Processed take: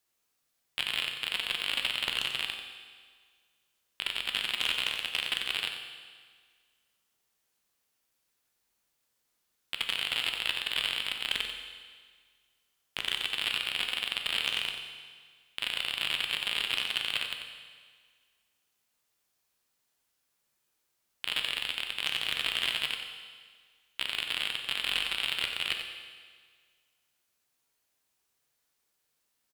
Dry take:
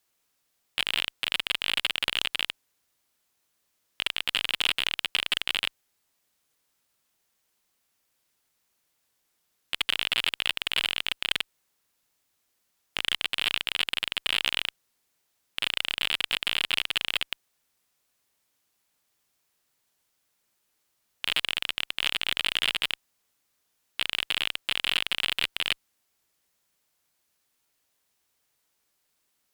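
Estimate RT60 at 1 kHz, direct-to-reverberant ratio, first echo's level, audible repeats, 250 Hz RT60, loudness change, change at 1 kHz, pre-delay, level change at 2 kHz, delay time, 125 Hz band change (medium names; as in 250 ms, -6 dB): 1.7 s, 3.0 dB, -9.0 dB, 1, 1.7 s, -3.5 dB, -3.0 dB, 9 ms, -3.5 dB, 91 ms, -3.0 dB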